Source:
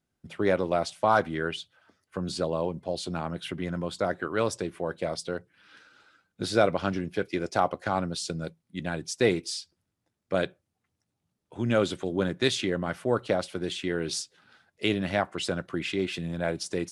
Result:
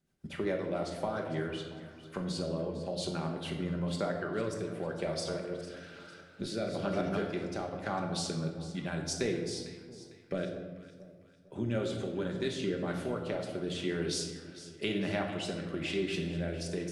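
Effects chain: 5.01–7.26 reverse delay 0.2 s, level -4 dB; compressor 2.5:1, threshold -38 dBFS, peak gain reduction 15 dB; rotary speaker horn 7.5 Hz, later 1 Hz, at 0.53; echo with dull and thin repeats by turns 0.226 s, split 1000 Hz, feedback 62%, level -11 dB; reverb RT60 1.2 s, pre-delay 5 ms, DRR 2 dB; gain +2.5 dB

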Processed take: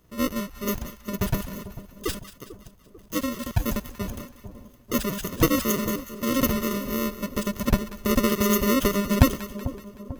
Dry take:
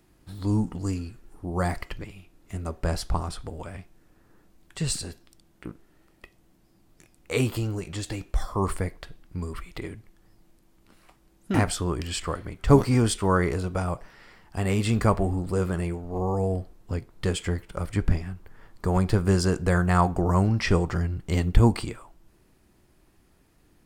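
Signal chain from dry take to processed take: FFT order left unsorted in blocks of 128 samples; speed mistake 33 rpm record played at 78 rpm; high shelf 7100 Hz -4.5 dB; split-band echo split 990 Hz, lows 0.444 s, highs 0.188 s, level -13.5 dB; gain +3.5 dB

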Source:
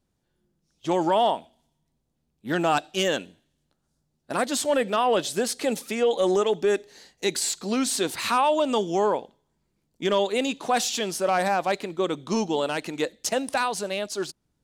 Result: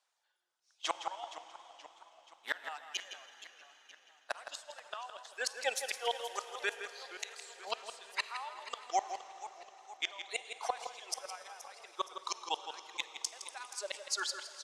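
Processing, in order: HPF 770 Hz 24 dB/oct; transient shaper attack +2 dB, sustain -4 dB; LPF 8400 Hz 12 dB/oct; in parallel at 0 dB: level quantiser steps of 24 dB; on the sum: reverb removal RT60 1.9 s; flipped gate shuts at -21 dBFS, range -27 dB; outdoor echo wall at 28 m, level -9 dB; on a send at -12 dB: reverb RT60 4.8 s, pre-delay 36 ms; on the sum: warbling echo 0.475 s, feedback 53%, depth 186 cents, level -14.5 dB; gain +1.5 dB

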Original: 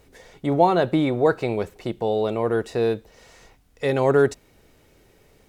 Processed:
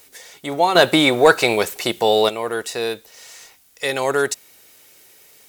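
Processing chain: tilt +4.5 dB/oct; 0.75–2.29 sine folder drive 5 dB, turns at -4 dBFS; gain +2.5 dB

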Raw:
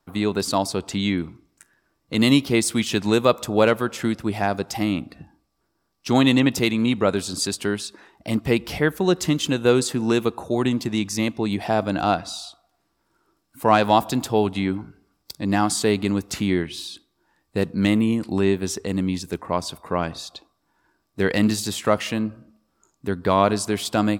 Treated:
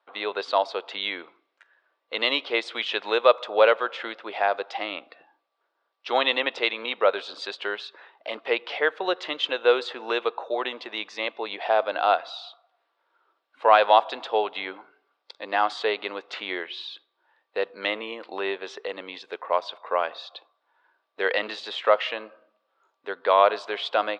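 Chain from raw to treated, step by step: Chebyshev band-pass 500–3600 Hz, order 3; gain +1.5 dB

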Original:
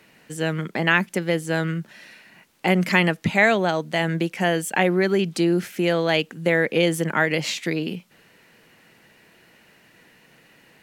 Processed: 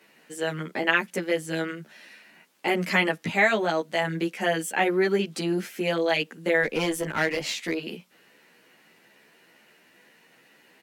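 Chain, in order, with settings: HPF 220 Hz 12 dB/oct; 6.63–7.75 one-sided clip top -21 dBFS; endless flanger 11.9 ms +2.3 Hz

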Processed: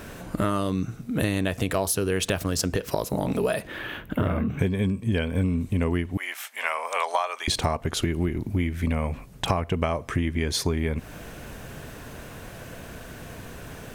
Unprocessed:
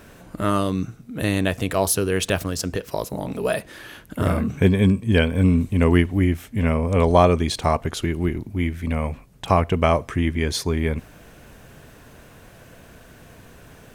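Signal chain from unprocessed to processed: 3.67–4.59 band shelf 7200 Hz -15 dB; 6.17–7.48 HPF 790 Hz 24 dB/oct; compressor 12:1, threshold -27 dBFS, peak gain reduction 16.5 dB; gain +6 dB

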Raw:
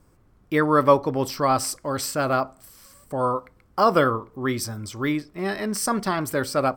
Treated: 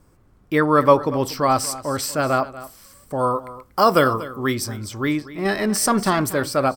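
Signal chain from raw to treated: 3.18–4.53 high shelf 8200 Hz -> 4200 Hz +11 dB; 5.45–6.31 sample leveller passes 1; on a send: echo 0.239 s -16.5 dB; on the sum: gain +2.5 dB

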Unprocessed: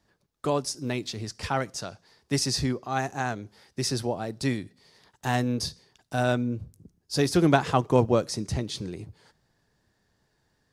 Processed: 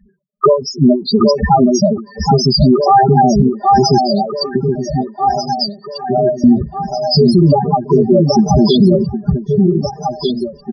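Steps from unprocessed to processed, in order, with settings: G.711 law mismatch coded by A; compressor 6:1, threshold -35 dBFS, peak gain reduction 19 dB; high shelf 2100 Hz -5 dB; comb 5 ms, depth 84%; loudest bins only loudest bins 4; 3.98–6.44 HPF 950 Hz 12 dB/oct; echo with dull and thin repeats by turns 0.772 s, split 1600 Hz, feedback 69%, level -5.5 dB; maximiser +34.5 dB; ending taper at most 180 dB/s; gain -1 dB

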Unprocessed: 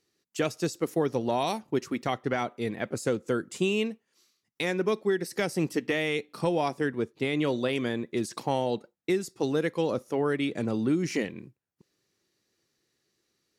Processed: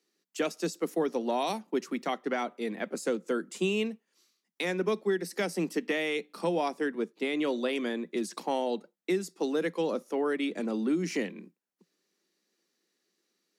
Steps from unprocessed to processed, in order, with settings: steep high-pass 170 Hz 96 dB/oct; gain -2 dB

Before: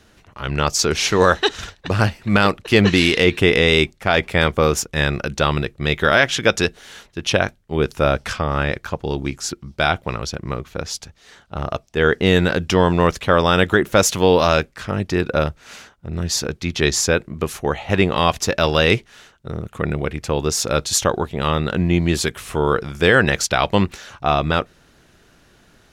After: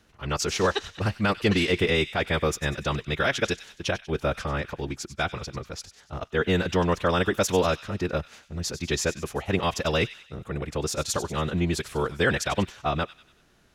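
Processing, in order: thin delay 0.18 s, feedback 46%, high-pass 2300 Hz, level -12 dB; time stretch by phase-locked vocoder 0.53×; gain -7 dB

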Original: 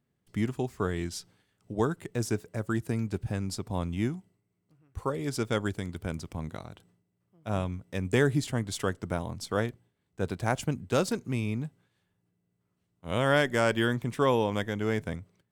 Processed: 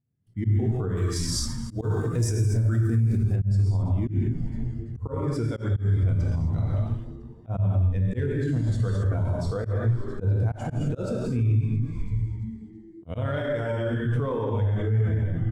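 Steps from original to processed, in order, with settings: short-mantissa float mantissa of 4-bit; one-sided clip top -19 dBFS; bell 100 Hz +11.5 dB 0.53 oct; frequency-shifting echo 0.335 s, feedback 51%, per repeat -110 Hz, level -15 dB; non-linear reverb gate 0.29 s flat, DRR -2.5 dB; auto swell 0.199 s; compressor 4:1, threshold -31 dBFS, peak gain reduction 14 dB; limiter -29.5 dBFS, peak gain reduction 10 dB; 0.97–3.36 high shelf 3300 Hz +10.5 dB; spectral expander 1.5:1; gain +8.5 dB

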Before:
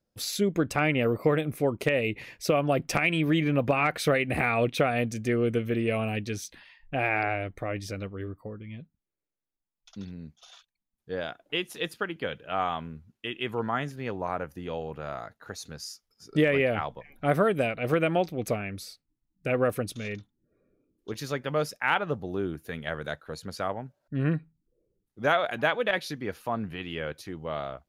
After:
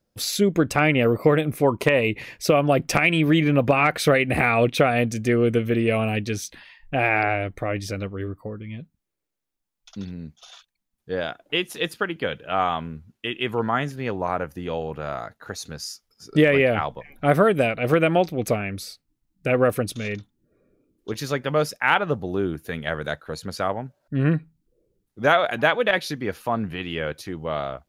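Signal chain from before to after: 1.62–2.09 bell 1000 Hz +11 dB 0.37 oct; gain +6 dB

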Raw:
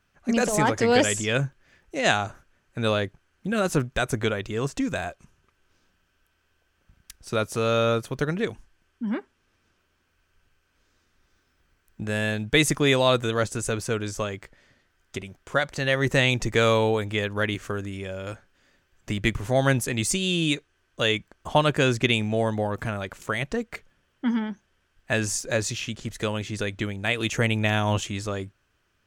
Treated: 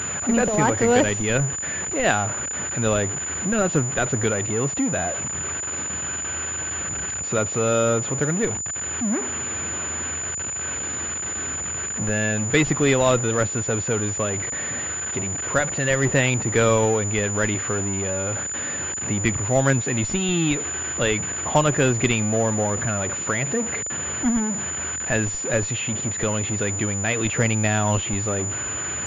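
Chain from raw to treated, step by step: zero-crossing step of -25 dBFS; HPF 71 Hz 24 dB/oct; in parallel at -9 dB: Schmitt trigger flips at -15.5 dBFS; on the sum: air absorption 54 m; pulse-width modulation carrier 7000 Hz

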